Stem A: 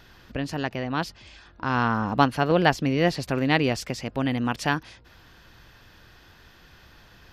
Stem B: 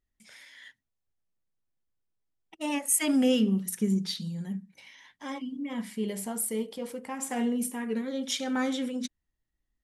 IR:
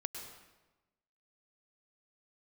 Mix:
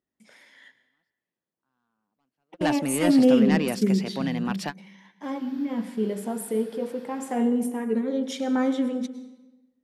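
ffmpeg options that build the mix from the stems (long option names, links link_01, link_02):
-filter_complex "[0:a]highpass=frequency=160:width=0.5412,highpass=frequency=160:width=1.3066,bandreject=frequency=6300:width=12,asoftclip=type=tanh:threshold=-17dB,volume=-1.5dB[link_01];[1:a]highpass=240,tiltshelf=frequency=1200:gain=8,volume=-2.5dB,asplit=3[link_02][link_03][link_04];[link_03]volume=-3.5dB[link_05];[link_04]apad=whole_len=323172[link_06];[link_01][link_06]sidechaingate=range=-50dB:threshold=-46dB:ratio=16:detection=peak[link_07];[2:a]atrim=start_sample=2205[link_08];[link_05][link_08]afir=irnorm=-1:irlink=0[link_09];[link_07][link_02][link_09]amix=inputs=3:normalize=0"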